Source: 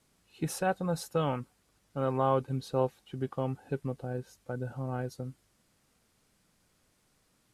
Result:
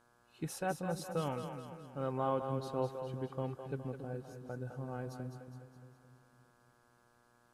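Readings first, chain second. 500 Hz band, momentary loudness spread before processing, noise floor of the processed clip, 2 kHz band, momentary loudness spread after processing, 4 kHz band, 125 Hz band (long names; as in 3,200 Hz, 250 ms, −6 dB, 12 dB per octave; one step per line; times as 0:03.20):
−6.0 dB, 11 LU, −69 dBFS, −6.0 dB, 13 LU, −6.0 dB, −6.0 dB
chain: echo with a time of its own for lows and highs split 390 Hz, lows 282 ms, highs 207 ms, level −7 dB
hum with harmonics 120 Hz, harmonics 14, −63 dBFS 0 dB per octave
level −7 dB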